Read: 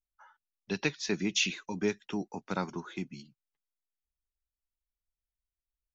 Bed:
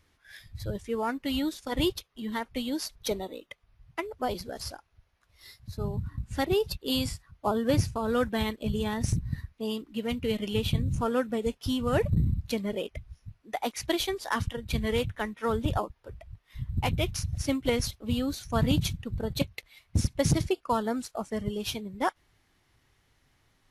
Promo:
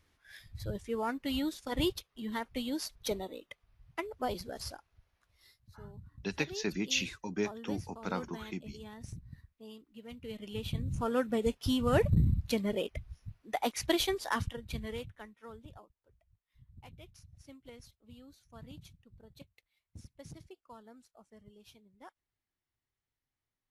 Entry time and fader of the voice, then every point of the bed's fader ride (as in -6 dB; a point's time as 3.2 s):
5.55 s, -3.0 dB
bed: 5.22 s -4 dB
5.62 s -17.5 dB
10.02 s -17.5 dB
11.35 s -1 dB
14.19 s -1 dB
15.78 s -25 dB